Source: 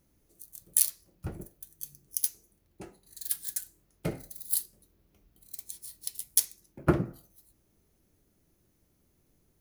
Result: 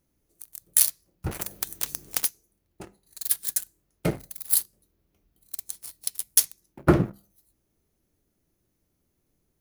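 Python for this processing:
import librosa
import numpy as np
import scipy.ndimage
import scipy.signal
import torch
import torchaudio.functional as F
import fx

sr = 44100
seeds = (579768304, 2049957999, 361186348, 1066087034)

y = fx.leveller(x, sr, passes=2)
y = fx.hum_notches(y, sr, base_hz=50, count=4)
y = fx.spectral_comp(y, sr, ratio=4.0, at=(1.31, 2.25))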